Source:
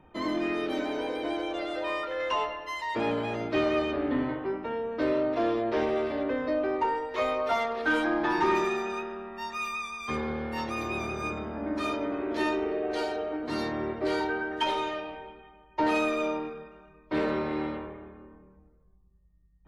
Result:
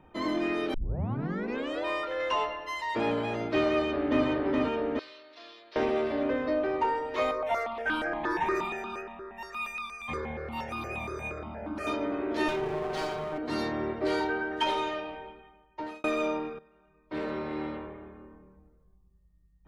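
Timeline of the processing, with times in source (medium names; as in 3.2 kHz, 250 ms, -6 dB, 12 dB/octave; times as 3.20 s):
0.74 s: tape start 1.10 s
3.69–4.26 s: echo throw 420 ms, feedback 70%, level -2 dB
4.99–5.76 s: band-pass filter 4.4 kHz, Q 2.6
7.31–11.87 s: stepped phaser 8.5 Hz 770–1900 Hz
12.48–13.38 s: comb filter that takes the minimum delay 5.2 ms
15.27–16.04 s: fade out
16.59–18.19 s: fade in, from -15 dB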